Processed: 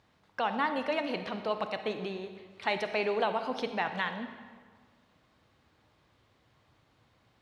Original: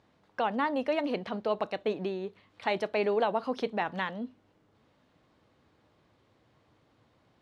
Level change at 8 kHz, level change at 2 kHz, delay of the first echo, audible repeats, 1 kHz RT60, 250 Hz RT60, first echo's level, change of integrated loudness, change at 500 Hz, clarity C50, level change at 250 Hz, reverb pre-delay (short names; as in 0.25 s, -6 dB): n/a, +2.0 dB, none, none, 1.6 s, 1.6 s, none, -1.0 dB, -3.0 dB, 8.5 dB, -3.0 dB, 40 ms